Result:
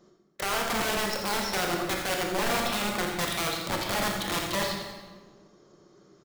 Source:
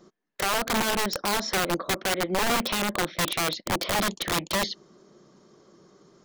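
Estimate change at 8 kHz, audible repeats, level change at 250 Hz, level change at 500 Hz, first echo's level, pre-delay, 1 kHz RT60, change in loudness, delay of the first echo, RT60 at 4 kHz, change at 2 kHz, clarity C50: -2.5 dB, 2, -2.5 dB, -1.5 dB, -8.5 dB, 21 ms, 1.3 s, -2.0 dB, 84 ms, 1.0 s, -2.0 dB, 2.0 dB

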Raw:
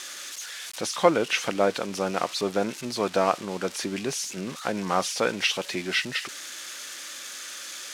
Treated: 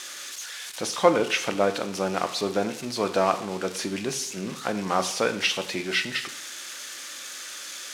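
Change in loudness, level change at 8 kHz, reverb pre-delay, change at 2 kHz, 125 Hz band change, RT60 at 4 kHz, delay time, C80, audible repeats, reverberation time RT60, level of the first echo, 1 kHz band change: +0.5 dB, +0.5 dB, 6 ms, +0.5 dB, +0.5 dB, 0.65 s, none, 15.5 dB, none, 0.70 s, none, +0.5 dB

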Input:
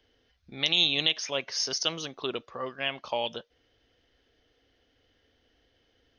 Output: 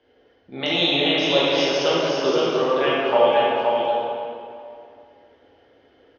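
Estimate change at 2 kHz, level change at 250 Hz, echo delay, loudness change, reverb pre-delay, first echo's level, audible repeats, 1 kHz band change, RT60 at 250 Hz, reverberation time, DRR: +8.5 dB, +15.5 dB, 0.519 s, +8.0 dB, 13 ms, -4.0 dB, 1, +16.5 dB, 2.3 s, 2.5 s, -8.5 dB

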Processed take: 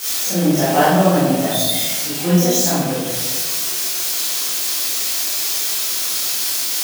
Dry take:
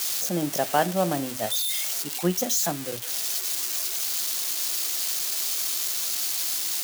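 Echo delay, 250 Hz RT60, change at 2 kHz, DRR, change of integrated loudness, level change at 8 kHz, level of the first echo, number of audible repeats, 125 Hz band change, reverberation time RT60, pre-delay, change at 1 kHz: none, 1.8 s, +9.5 dB, -11.5 dB, +8.0 dB, +7.0 dB, none, none, +14.0 dB, 1.5 s, 21 ms, +9.0 dB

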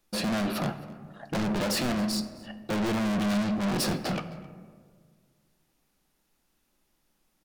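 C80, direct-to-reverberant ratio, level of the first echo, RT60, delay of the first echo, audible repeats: 12.5 dB, 9.5 dB, -22.5 dB, 1.8 s, 0.264 s, 1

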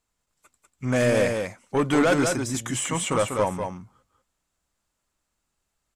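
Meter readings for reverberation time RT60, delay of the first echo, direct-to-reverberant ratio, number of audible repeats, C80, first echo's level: none, 0.194 s, none, 1, none, -5.0 dB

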